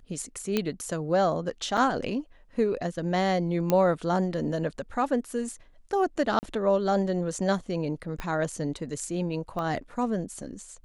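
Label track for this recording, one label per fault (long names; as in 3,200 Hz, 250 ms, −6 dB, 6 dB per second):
0.570000	0.570000	click −11 dBFS
1.770000	1.780000	drop-out 5.4 ms
3.700000	3.700000	click −11 dBFS
6.390000	6.430000	drop-out 39 ms
8.200000	8.200000	click −19 dBFS
9.590000	9.590000	click −22 dBFS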